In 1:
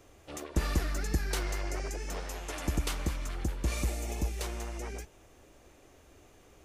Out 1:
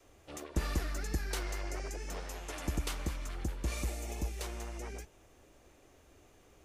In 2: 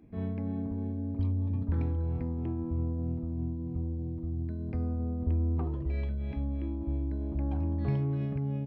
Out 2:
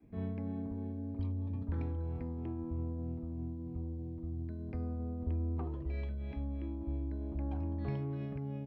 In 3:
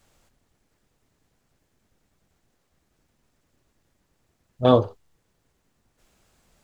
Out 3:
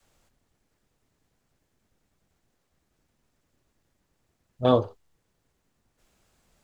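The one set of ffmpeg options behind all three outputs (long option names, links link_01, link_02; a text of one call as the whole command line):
ffmpeg -i in.wav -af "adynamicequalizer=threshold=0.01:dfrequency=130:dqfactor=0.78:tfrequency=130:tqfactor=0.78:attack=5:release=100:ratio=0.375:range=2.5:mode=cutabove:tftype=bell,volume=-3.5dB" out.wav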